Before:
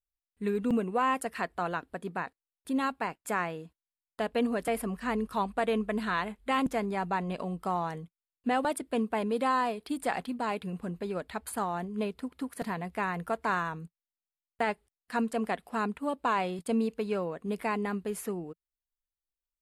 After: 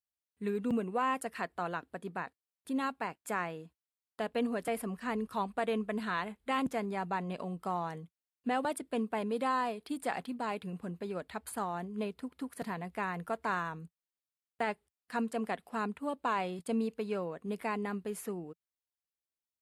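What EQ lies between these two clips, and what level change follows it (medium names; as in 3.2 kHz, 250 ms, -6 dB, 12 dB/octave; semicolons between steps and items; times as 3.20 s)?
high-pass 65 Hz 24 dB/octave; -4.0 dB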